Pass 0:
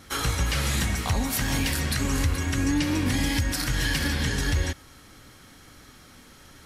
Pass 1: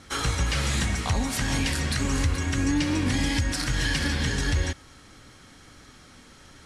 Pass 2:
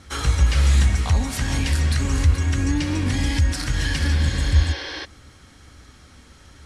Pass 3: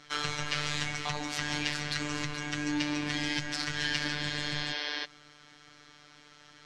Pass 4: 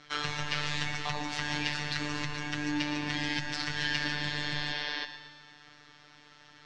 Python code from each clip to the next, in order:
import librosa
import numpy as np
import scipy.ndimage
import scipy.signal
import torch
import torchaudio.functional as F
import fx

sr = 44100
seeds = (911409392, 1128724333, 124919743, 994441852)

y1 = scipy.signal.sosfilt(scipy.signal.butter(4, 9700.0, 'lowpass', fs=sr, output='sos'), x)
y2 = fx.spec_repair(y1, sr, seeds[0], start_s=4.25, length_s=0.77, low_hz=290.0, high_hz=6400.0, source='before')
y2 = fx.peak_eq(y2, sr, hz=68.0, db=13.5, octaves=0.69)
y3 = fx.riaa(y2, sr, side='recording')
y3 = fx.robotise(y3, sr, hz=148.0)
y3 = fx.air_absorb(y3, sr, metres=190.0)
y3 = y3 * 10.0 ** (-1.0 / 20.0)
y4 = scipy.signal.sosfilt(scipy.signal.butter(2, 5600.0, 'lowpass', fs=sr, output='sos'), y3)
y4 = fx.echo_feedback(y4, sr, ms=116, feedback_pct=58, wet_db=-11.0)